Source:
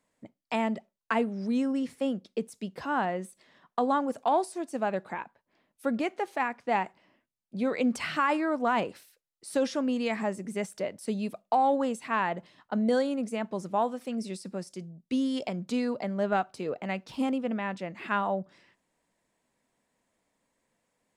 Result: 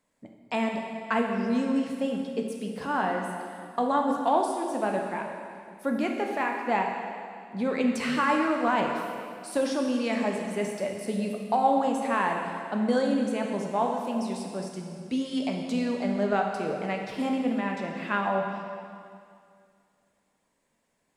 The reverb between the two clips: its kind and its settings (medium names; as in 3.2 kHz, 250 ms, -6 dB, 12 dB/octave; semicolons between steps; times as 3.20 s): plate-style reverb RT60 2.3 s, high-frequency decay 0.95×, DRR 1 dB